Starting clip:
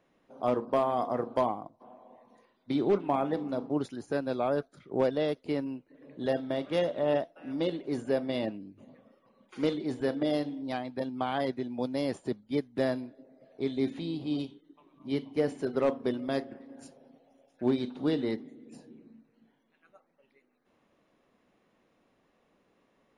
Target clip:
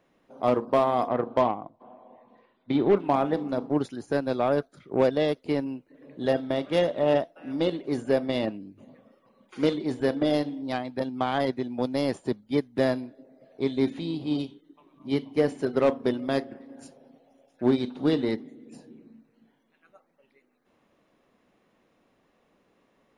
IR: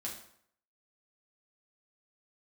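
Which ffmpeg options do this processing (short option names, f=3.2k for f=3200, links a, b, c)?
-filter_complex "[0:a]asettb=1/sr,asplit=3[a][b][c];[a]atrim=end=1.084[d];[b]atrim=start=1.08:end=2.97,asetpts=PTS-STARTPTS,afade=t=in:d=0.004:c=qsin,afade=t=out:st=1.886:d=0.004:c=qsin,lowpass=f=3.7k:w=0.5412,lowpass=f=3.7k:w=1.3066[e];[c]atrim=start=2.966[f];[d][e]acrossfade=d=0.004:c1=hsin:c2=qsin[g];[g][f]acrossfade=d=0.004:c1=qsin:c2=hsin,aeval=exprs='0.158*(cos(1*acos(clip(val(0)/0.158,-1,1)))-cos(1*PI/2))+0.00501*(cos(7*acos(clip(val(0)/0.158,-1,1)))-cos(7*PI/2))':c=same,volume=5dB"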